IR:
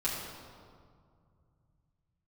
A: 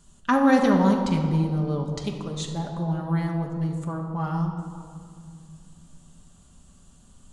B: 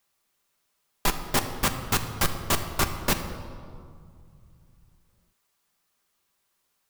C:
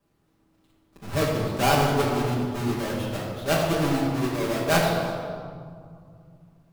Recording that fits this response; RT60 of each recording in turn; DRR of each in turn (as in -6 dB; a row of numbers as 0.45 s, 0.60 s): C; 2.2 s, 2.1 s, 2.2 s; 0.5 dB, 5.5 dB, -9.0 dB